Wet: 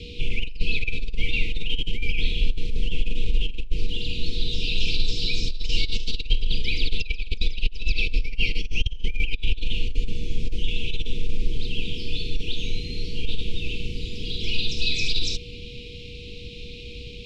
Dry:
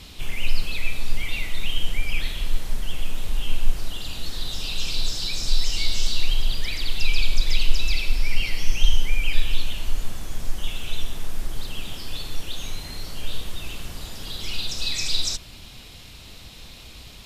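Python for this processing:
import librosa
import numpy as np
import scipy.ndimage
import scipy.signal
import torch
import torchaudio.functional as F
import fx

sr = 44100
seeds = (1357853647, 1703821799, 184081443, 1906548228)

y = x + 10.0 ** (-46.0 / 20.0) * np.sin(2.0 * np.pi * 480.0 * np.arange(len(x)) / sr)
y = fx.over_compress(y, sr, threshold_db=-18.0, ratio=-0.5)
y = scipy.signal.sosfilt(scipy.signal.cheby1(4, 1.0, [450.0, 2400.0], 'bandstop', fs=sr, output='sos'), y)
y = fx.dynamic_eq(y, sr, hz=1600.0, q=3.4, threshold_db=-53.0, ratio=4.0, max_db=-6)
y = scipy.signal.sosfilt(scipy.signal.cheby1(2, 1.0, 2800.0, 'lowpass', fs=sr, output='sos'), y)
y = y * 10.0 ** (4.0 / 20.0)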